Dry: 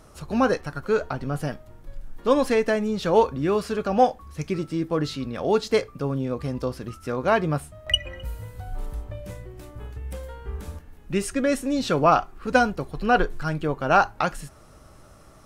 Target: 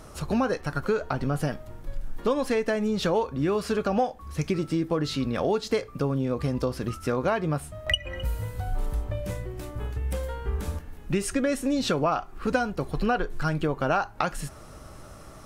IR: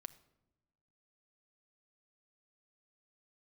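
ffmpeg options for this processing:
-af "acompressor=threshold=-27dB:ratio=6,volume=5dB"

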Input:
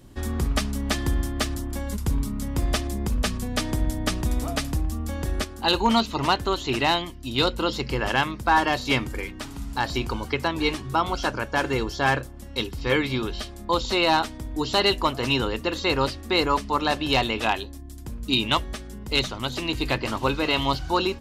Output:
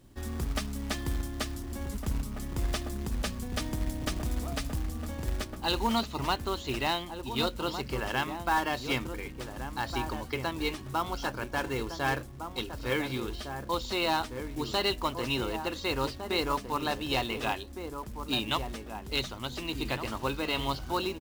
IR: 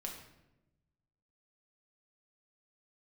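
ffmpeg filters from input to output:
-filter_complex "[0:a]asplit=2[a][b];[b]adelay=1458,volume=-7dB,highshelf=f=4k:g=-32.8[c];[a][c]amix=inputs=2:normalize=0,acrusher=bits=4:mode=log:mix=0:aa=0.000001,volume=-8dB"

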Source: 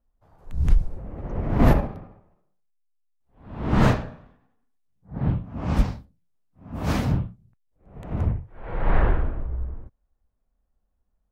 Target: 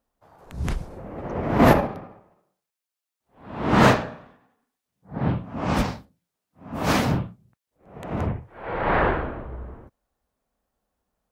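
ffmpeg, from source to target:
-af "highpass=f=350:p=1,volume=8dB"

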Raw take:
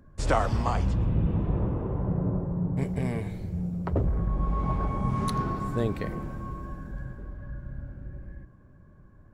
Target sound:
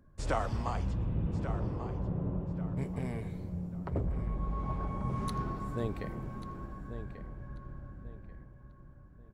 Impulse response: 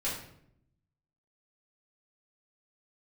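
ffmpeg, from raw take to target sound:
-filter_complex "[0:a]asplit=2[a][b];[b]adelay=1139,lowpass=f=3.8k:p=1,volume=-10dB,asplit=2[c][d];[d]adelay=1139,lowpass=f=3.8k:p=1,volume=0.32,asplit=2[e][f];[f]adelay=1139,lowpass=f=3.8k:p=1,volume=0.32,asplit=2[g][h];[h]adelay=1139,lowpass=f=3.8k:p=1,volume=0.32[i];[a][c][e][g][i]amix=inputs=5:normalize=0,volume=-7.5dB"

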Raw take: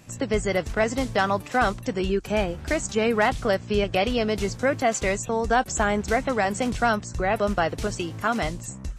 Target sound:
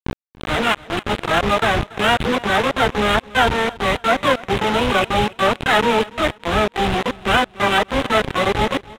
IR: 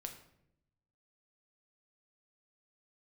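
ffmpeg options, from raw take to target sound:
-filter_complex "[0:a]areverse,acompressor=mode=upward:threshold=-32dB:ratio=2.5,asplit=3[a][b][c];[b]asetrate=58866,aresample=44100,atempo=0.749154,volume=-17dB[d];[c]asetrate=88200,aresample=44100,atempo=0.5,volume=-1dB[e];[a][d][e]amix=inputs=3:normalize=0,aresample=8000,acrusher=bits=3:mix=0:aa=0.000001,aresample=44100,adynamicsmooth=sensitivity=5:basefreq=2.4k,asplit=2[f][g];[g]aecho=0:1:285|570|855:0.0944|0.0312|0.0103[h];[f][h]amix=inputs=2:normalize=0,volume=3dB"

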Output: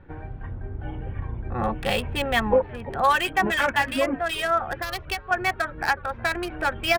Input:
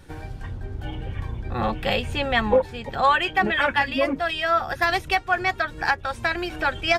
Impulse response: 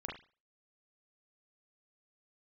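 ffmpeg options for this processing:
-filter_complex "[0:a]asettb=1/sr,asplit=3[a][b][c];[a]atrim=end=4.764[d];[b]atrim=start=4.76:end=5.31,asetpts=PTS-STARTPTS,afade=t=in:d=0.004:c=qsin,afade=t=out:st=0.546:d=0.004:c=qsin,acrossover=split=120|3000[e][f][g];[f]acompressor=threshold=-29dB:ratio=6[h];[e][h][g]amix=inputs=3:normalize=0[i];[c]atrim=start=5.306[j];[d][i]acrossfade=d=0.004:c1=hsin:c2=qsin[k];[k][j]acrossfade=d=0.004:c1=qsin:c2=hsin,asplit=4[l][m][n][o];[m]adelay=368,afreqshift=-120,volume=-21dB[p];[n]adelay=736,afreqshift=-240,volume=-27.9dB[q];[o]adelay=1104,afreqshift=-360,volume=-34.9dB[r];[l][p][q][r]amix=inputs=4:normalize=0,acrossover=split=2300[s][t];[t]acrusher=bits=4:mix=0:aa=0.5[u];[s][u]amix=inputs=2:normalize=0,volume=-1dB"

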